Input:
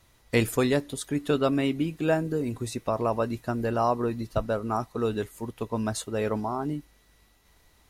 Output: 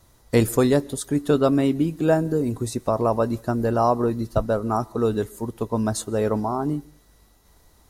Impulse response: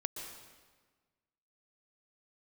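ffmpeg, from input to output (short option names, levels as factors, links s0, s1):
-filter_complex "[0:a]equalizer=f=2500:t=o:w=1.2:g=-10,asplit=2[s0][s1];[1:a]atrim=start_sample=2205,afade=t=out:st=0.25:d=0.01,atrim=end_sample=11466[s2];[s1][s2]afir=irnorm=-1:irlink=0,volume=0.119[s3];[s0][s3]amix=inputs=2:normalize=0,volume=1.78"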